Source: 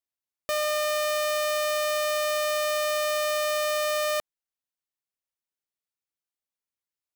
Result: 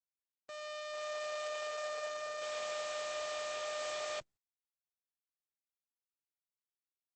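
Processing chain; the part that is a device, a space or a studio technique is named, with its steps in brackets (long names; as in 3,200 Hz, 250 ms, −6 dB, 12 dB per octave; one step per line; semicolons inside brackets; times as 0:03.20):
high-pass filter 110 Hz 6 dB per octave
video call (high-pass filter 120 Hz 24 dB per octave; automatic gain control gain up to 15 dB; noise gate −7 dBFS, range −31 dB; level +1.5 dB; Opus 12 kbit/s 48,000 Hz)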